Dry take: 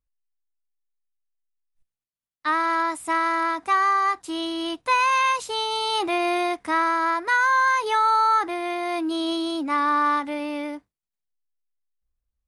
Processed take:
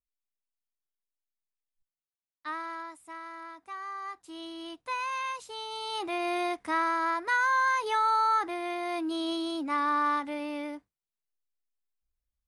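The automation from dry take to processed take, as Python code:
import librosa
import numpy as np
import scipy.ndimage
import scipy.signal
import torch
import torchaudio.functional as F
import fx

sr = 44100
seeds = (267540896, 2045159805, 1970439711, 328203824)

y = fx.gain(x, sr, db=fx.line((2.51, -13.0), (3.08, -20.0), (3.74, -20.0), (4.47, -13.0), (5.58, -13.0), (6.46, -6.0)))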